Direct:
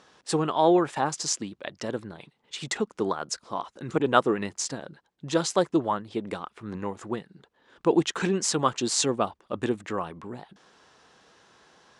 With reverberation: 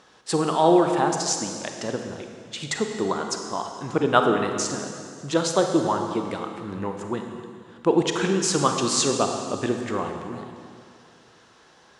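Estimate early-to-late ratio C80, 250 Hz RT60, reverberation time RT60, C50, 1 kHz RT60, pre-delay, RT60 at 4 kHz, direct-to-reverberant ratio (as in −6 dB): 5.5 dB, 2.3 s, 2.2 s, 5.0 dB, 2.1 s, 29 ms, 2.0 s, 4.0 dB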